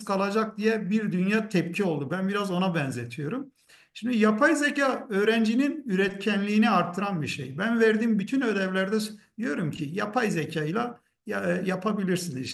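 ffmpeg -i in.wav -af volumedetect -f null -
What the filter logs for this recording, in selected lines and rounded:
mean_volume: -26.1 dB
max_volume: -8.6 dB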